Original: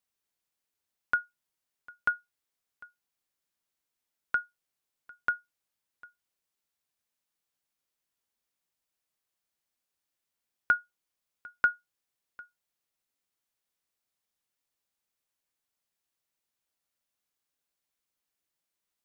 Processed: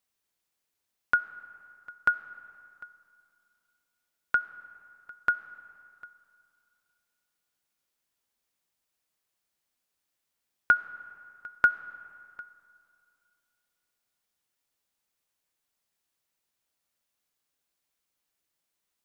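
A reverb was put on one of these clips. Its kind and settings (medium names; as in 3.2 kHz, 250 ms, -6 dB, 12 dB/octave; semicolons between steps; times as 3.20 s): algorithmic reverb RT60 2.6 s, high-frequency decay 0.6×, pre-delay 25 ms, DRR 15.5 dB; trim +3.5 dB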